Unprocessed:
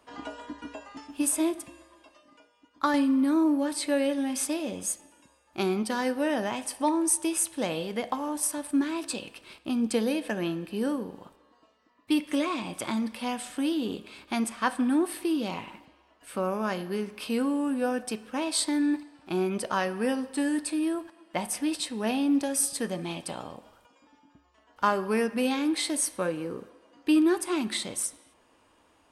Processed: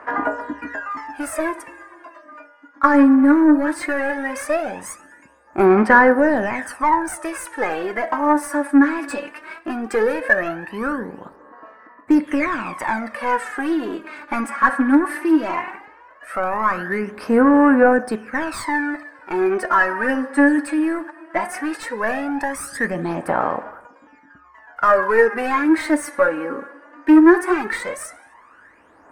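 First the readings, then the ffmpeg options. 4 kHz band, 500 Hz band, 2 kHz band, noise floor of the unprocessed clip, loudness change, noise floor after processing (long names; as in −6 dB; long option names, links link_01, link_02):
−5.0 dB, +11.0 dB, +16.0 dB, −64 dBFS, +9.5 dB, −50 dBFS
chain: -filter_complex "[0:a]asplit=2[link_01][link_02];[link_02]highpass=frequency=720:poles=1,volume=20dB,asoftclip=type=tanh:threshold=-10dB[link_03];[link_01][link_03]amix=inputs=2:normalize=0,lowpass=frequency=6000:poles=1,volume=-6dB,highshelf=frequency=2400:width_type=q:width=3:gain=-11.5,aphaser=in_gain=1:out_gain=1:delay=3.6:decay=0.7:speed=0.17:type=sinusoidal,volume=-1.5dB"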